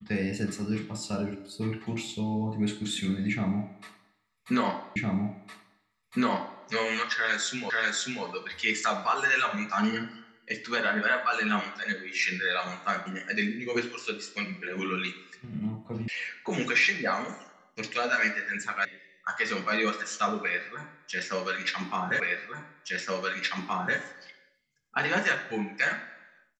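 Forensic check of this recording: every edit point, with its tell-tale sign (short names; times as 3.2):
4.96 repeat of the last 1.66 s
7.7 repeat of the last 0.54 s
16.08 sound cut off
18.85 sound cut off
22.2 repeat of the last 1.77 s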